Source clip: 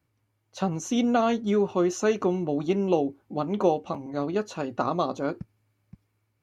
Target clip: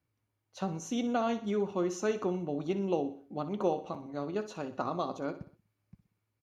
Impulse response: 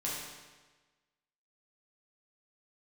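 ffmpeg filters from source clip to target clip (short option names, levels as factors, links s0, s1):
-af "bandreject=f=7800:w=17,aecho=1:1:61|122|183|244:0.224|0.101|0.0453|0.0204,volume=0.422"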